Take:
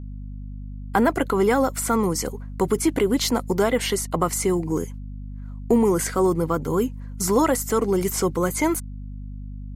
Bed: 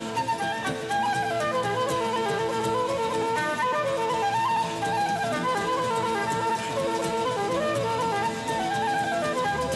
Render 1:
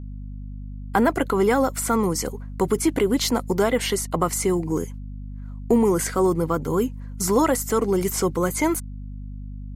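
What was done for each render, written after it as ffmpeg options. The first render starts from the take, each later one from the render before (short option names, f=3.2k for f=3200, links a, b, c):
-af anull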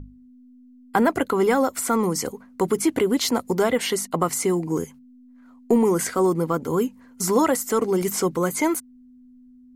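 -af "bandreject=f=50:t=h:w=6,bandreject=f=100:t=h:w=6,bandreject=f=150:t=h:w=6,bandreject=f=200:t=h:w=6"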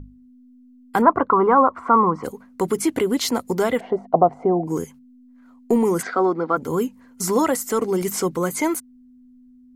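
-filter_complex "[0:a]asplit=3[a][b][c];[a]afade=t=out:st=1.01:d=0.02[d];[b]lowpass=f=1.1k:t=q:w=6,afade=t=in:st=1.01:d=0.02,afade=t=out:st=2.23:d=0.02[e];[c]afade=t=in:st=2.23:d=0.02[f];[d][e][f]amix=inputs=3:normalize=0,asplit=3[g][h][i];[g]afade=t=out:st=3.79:d=0.02[j];[h]lowpass=f=710:t=q:w=6.1,afade=t=in:st=3.79:d=0.02,afade=t=out:st=4.66:d=0.02[k];[i]afade=t=in:st=4.66:d=0.02[l];[j][k][l]amix=inputs=3:normalize=0,asplit=3[m][n][o];[m]afade=t=out:st=6.01:d=0.02[p];[n]highpass=f=210:w=0.5412,highpass=f=210:w=1.3066,equalizer=f=730:t=q:w=4:g=7,equalizer=f=1.4k:t=q:w=4:g=9,equalizer=f=2.9k:t=q:w=4:g=-8,lowpass=f=4.3k:w=0.5412,lowpass=f=4.3k:w=1.3066,afade=t=in:st=6.01:d=0.02,afade=t=out:st=6.56:d=0.02[q];[o]afade=t=in:st=6.56:d=0.02[r];[p][q][r]amix=inputs=3:normalize=0"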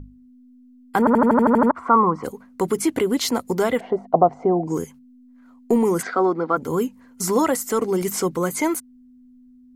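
-filter_complex "[0:a]asettb=1/sr,asplit=3[a][b][c];[a]atrim=end=4.204[d];[b]atrim=start=4.2:end=4.74,asetpts=PTS-STARTPTS,afade=t=in:d=0.004:c=qsin,afade=t=out:st=0.536:d=0.004:c=qsin,lowpass=f=6.4k:t=q:w=1.9[e];[c]atrim=start=4.736[f];[d][e]acrossfade=d=0.004:c1=hsin:c2=qsin[g];[g][f]acrossfade=d=0.004:c1=qsin:c2=hsin,asplit=10[h][i][j][k][l][m][n][o][p][q];[h]atrim=end=1.072[r];[i]atrim=start=0.988:end=1.072[s];[j]atrim=start=0.988:end=1.072[t];[k]atrim=start=0.988:end=1.072[u];[l]atrim=start=0.988:end=1.072[v];[m]atrim=start=0.988:end=1.072[w];[n]atrim=start=0.988:end=1.072[x];[o]atrim=start=0.988:end=1.072[y];[p]atrim=start=0.988:end=1.072[z];[q]atrim=start=1.708[aa];[r][s]acrossfade=d=0.004:c1=hsin:c2=hsin[ab];[ab][t]acrossfade=d=0.004:c1=hsin:c2=hsin[ac];[ac][u]acrossfade=d=0.004:c1=hsin:c2=hsin[ad];[ad][v]acrossfade=d=0.004:c1=hsin:c2=hsin[ae];[ae][w]acrossfade=d=0.004:c1=hsin:c2=hsin[af];[af][x]acrossfade=d=0.004:c1=hsin:c2=hsin[ag];[ag][y]acrossfade=d=0.004:c1=hsin:c2=hsin[ah];[ah][z]acrossfade=d=0.004:c1=hsin:c2=hsin[ai];[ai][aa]acrossfade=d=0.004:c1=hsin:c2=hsin"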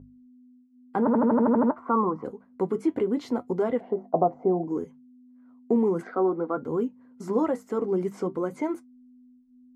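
-af "flanger=delay=7.3:depth=3.5:regen=-62:speed=0.57:shape=triangular,bandpass=f=320:t=q:w=0.54:csg=0"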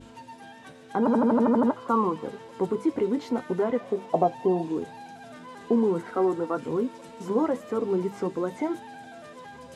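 -filter_complex "[1:a]volume=-18.5dB[a];[0:a][a]amix=inputs=2:normalize=0"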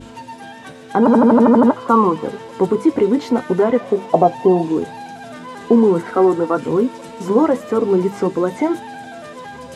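-af "volume=10.5dB,alimiter=limit=-1dB:level=0:latency=1"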